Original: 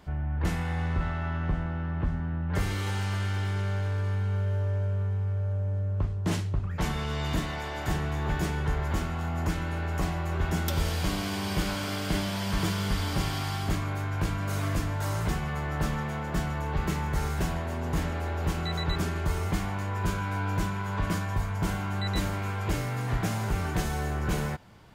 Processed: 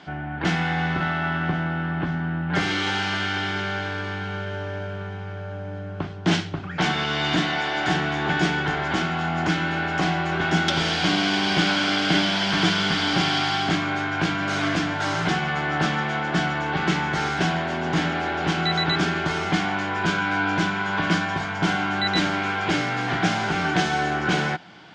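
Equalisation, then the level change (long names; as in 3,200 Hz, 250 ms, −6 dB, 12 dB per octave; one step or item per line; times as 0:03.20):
loudspeaker in its box 160–5,600 Hz, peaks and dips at 170 Hz +9 dB, 300 Hz +9 dB, 750 Hz +10 dB, 1,500 Hz +9 dB, 2,200 Hz +4 dB, 3,200 Hz +6 dB
parametric band 370 Hz +5 dB 0.2 octaves
high-shelf EQ 2,100 Hz +10.5 dB
+2.0 dB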